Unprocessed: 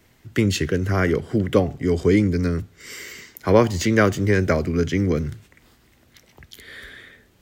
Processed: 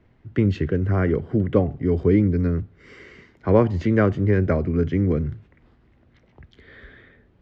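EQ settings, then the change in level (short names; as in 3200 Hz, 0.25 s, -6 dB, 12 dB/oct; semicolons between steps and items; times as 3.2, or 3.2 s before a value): tape spacing loss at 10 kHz 40 dB; low shelf 140 Hz +3 dB; 0.0 dB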